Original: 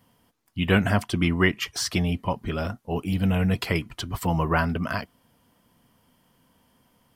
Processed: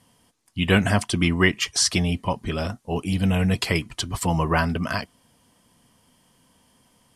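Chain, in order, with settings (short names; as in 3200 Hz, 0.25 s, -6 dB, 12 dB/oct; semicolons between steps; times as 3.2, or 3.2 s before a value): LPF 10000 Hz 24 dB/oct; high shelf 5200 Hz +12 dB; notch 1400 Hz, Q 16; gain +1.5 dB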